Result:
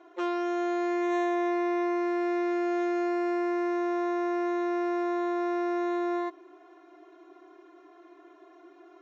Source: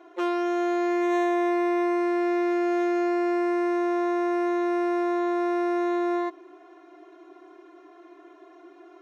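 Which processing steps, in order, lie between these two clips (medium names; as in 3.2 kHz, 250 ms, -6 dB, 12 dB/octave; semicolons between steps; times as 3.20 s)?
Chebyshev low-pass 7.7 kHz, order 10; trim -3 dB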